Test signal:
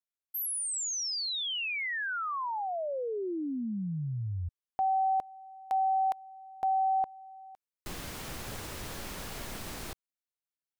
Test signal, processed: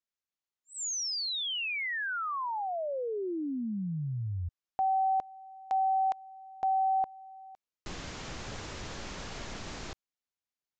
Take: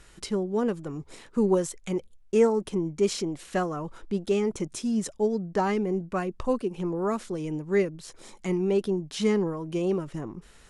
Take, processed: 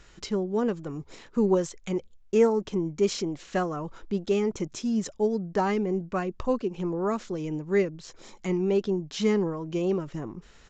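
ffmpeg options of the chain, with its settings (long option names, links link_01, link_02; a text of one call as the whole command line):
ffmpeg -i in.wav -af "aresample=16000,aresample=44100" out.wav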